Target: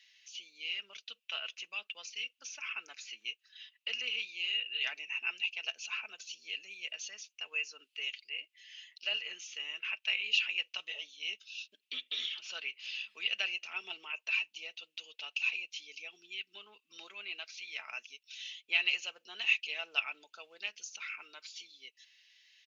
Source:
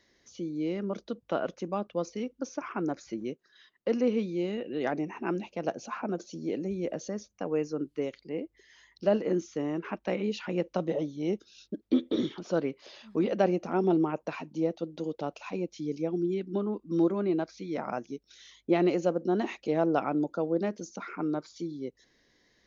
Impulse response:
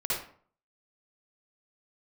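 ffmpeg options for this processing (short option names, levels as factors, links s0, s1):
-af "highpass=f=2700:t=q:w=8.5,aecho=1:1:4.6:0.43"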